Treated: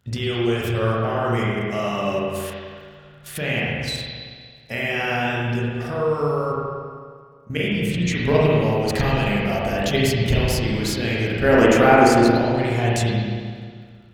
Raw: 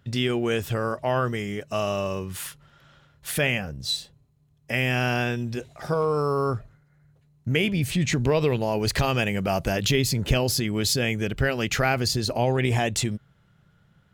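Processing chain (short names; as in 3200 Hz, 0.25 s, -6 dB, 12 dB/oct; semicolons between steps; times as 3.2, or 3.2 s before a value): 11.44–12.24 graphic EQ 125/250/500/1000/4000/8000 Hz -5/+8/+8/+9/-4/+8 dB; level quantiser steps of 10 dB; crackle 35/s -53 dBFS; 6.52–7.5 metallic resonator 190 Hz, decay 0.23 s, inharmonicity 0.008; spring tank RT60 1.9 s, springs 34/45 ms, chirp 75 ms, DRR -6 dB; gain +2 dB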